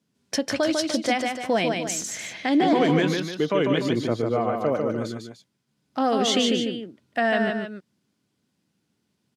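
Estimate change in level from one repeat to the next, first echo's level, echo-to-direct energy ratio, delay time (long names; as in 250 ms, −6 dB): −7.0 dB, −4.0 dB, −3.0 dB, 148 ms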